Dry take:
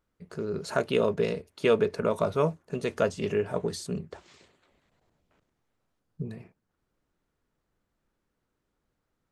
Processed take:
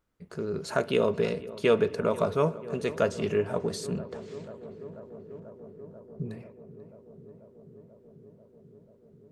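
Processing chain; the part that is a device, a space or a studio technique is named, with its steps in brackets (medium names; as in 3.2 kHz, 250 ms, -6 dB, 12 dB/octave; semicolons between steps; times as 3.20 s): dub delay into a spring reverb (filtered feedback delay 489 ms, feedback 85%, low-pass 1.7 kHz, level -17 dB; spring tank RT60 1.1 s, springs 58 ms, DRR 19 dB)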